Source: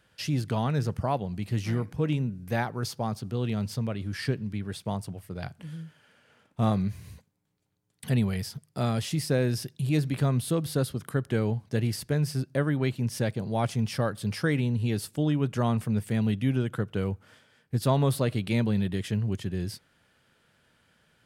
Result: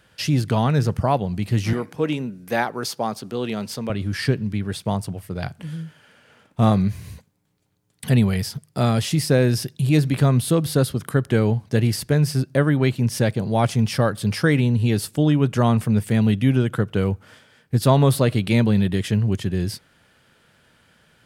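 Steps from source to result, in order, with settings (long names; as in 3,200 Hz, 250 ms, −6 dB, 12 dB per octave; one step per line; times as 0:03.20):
0:01.73–0:03.90: high-pass filter 260 Hz 12 dB per octave
level +8 dB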